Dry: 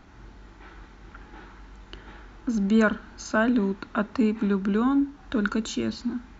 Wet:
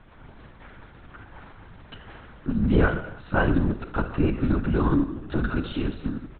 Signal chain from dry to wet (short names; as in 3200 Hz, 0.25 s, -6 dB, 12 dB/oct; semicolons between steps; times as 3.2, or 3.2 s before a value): outdoor echo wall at 55 m, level -29 dB; non-linear reverb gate 0.32 s falling, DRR 7 dB; LPC vocoder at 8 kHz whisper